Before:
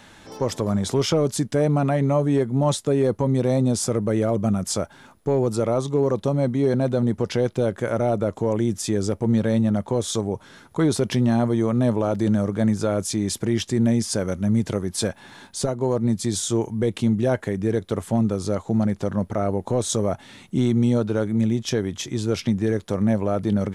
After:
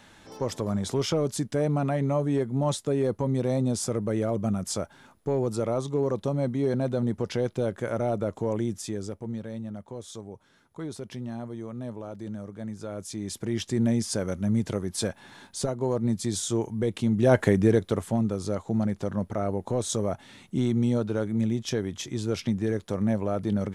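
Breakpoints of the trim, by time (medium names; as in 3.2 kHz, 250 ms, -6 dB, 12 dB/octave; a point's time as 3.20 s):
8.57 s -5.5 dB
9.48 s -16 dB
12.67 s -16 dB
13.74 s -4.5 dB
17.10 s -4.5 dB
17.43 s +6 dB
18.19 s -5 dB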